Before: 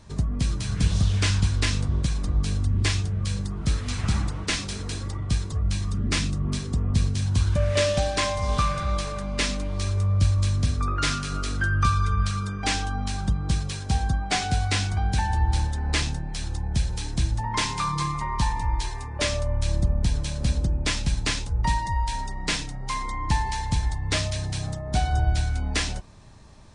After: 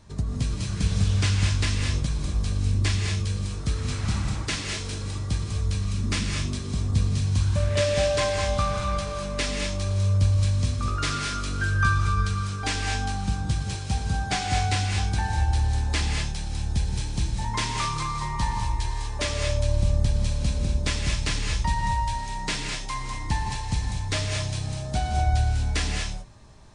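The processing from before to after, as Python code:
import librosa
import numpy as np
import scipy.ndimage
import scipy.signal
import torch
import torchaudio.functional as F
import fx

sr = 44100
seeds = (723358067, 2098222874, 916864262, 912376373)

y = fx.rev_gated(x, sr, seeds[0], gate_ms=260, shape='rising', drr_db=1.5)
y = fx.dmg_crackle(y, sr, seeds[1], per_s=fx.line((16.78, 24.0), (17.35, 68.0)), level_db=-42.0, at=(16.78, 17.35), fade=0.02)
y = y * librosa.db_to_amplitude(-3.0)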